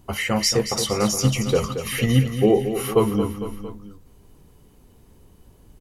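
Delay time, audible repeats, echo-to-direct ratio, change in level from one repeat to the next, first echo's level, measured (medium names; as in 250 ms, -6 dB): 227 ms, 3, -8.0 dB, -5.0 dB, -9.5 dB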